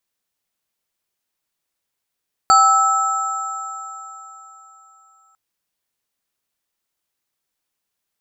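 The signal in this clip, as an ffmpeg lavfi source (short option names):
-f lavfi -i "aevalsrc='0.2*pow(10,-3*t/3.38)*sin(2*PI*780*t)+0.376*pow(10,-3*t/3.69)*sin(2*PI*1310*t)+0.0891*pow(10,-3*t/0.6)*sin(2*PI*4560*t)+0.0944*pow(10,-3*t/3.92)*sin(2*PI*7380*t)':d=2.85:s=44100"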